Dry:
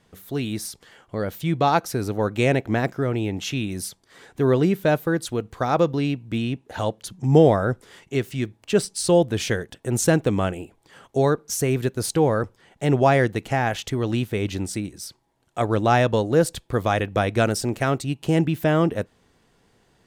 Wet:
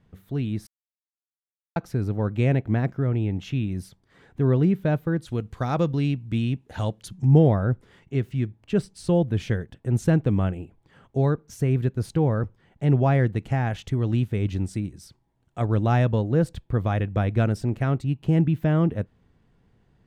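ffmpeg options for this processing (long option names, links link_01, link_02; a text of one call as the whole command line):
ffmpeg -i in.wav -filter_complex "[0:a]asettb=1/sr,asplit=3[link_01][link_02][link_03];[link_01]atrim=end=5.284[link_04];[link_02]atrim=start=5.28:end=7.25,asetpts=PTS-STARTPTS,afade=type=in:duration=0.004:curve=qsin,afade=type=out:start_time=1.966:duration=0.004:curve=qsin,equalizer=frequency=9200:width=0.31:gain=12[link_05];[link_03]atrim=start=7.246[link_06];[link_04][link_05]acrossfade=duration=0.004:curve1=hsin:curve2=qsin[link_07];[link_07][link_06]acrossfade=duration=0.004:curve1=qsin:curve2=hsin,asettb=1/sr,asplit=3[link_08][link_09][link_10];[link_08]atrim=end=13.364[link_11];[link_09]atrim=start=13.36:end=16.05,asetpts=PTS-STARTPTS,afade=type=in:duration=0.004:curve=qsin,afade=type=out:start_time=2.686:duration=0.004:curve=qsin,equalizer=frequency=8400:width_type=o:width=1.6:gain=5.5[link_12];[link_10]atrim=start=16.046[link_13];[link_11][link_12]acrossfade=duration=0.004:curve1=hsin:curve2=qsin[link_14];[link_14][link_13]acrossfade=duration=0.004:curve1=qsin:curve2=hsin,asplit=3[link_15][link_16][link_17];[link_15]atrim=end=0.67,asetpts=PTS-STARTPTS,afade=type=out:start_time=0.666:duration=0.004:curve=hsin[link_18];[link_16]atrim=start=0.67:end=1.76,asetpts=PTS-STARTPTS,volume=0[link_19];[link_17]atrim=start=1.76,asetpts=PTS-STARTPTS,afade=type=in:duration=0.004:curve=hsin[link_20];[link_18][link_19][link_20]concat=n=3:v=0:a=1,bass=frequency=250:gain=12,treble=frequency=4000:gain=-11,volume=-7.5dB" out.wav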